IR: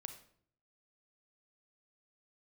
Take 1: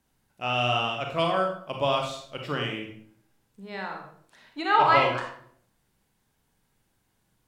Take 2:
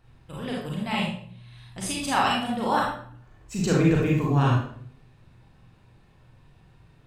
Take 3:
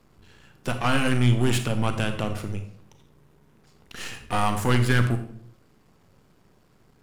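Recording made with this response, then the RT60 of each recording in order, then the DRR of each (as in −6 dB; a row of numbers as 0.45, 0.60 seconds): 3; 0.60, 0.60, 0.60 seconds; 1.0, −4.0, 7.5 decibels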